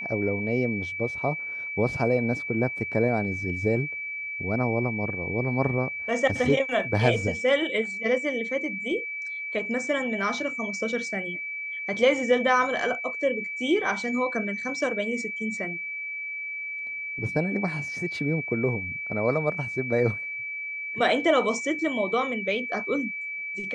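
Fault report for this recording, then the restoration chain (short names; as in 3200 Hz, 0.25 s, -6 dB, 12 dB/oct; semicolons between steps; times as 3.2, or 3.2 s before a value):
tone 2300 Hz -31 dBFS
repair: notch 2300 Hz, Q 30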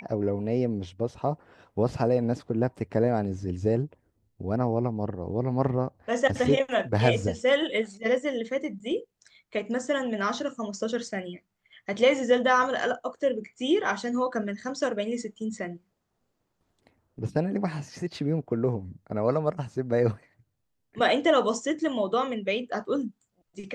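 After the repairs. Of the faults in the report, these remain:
none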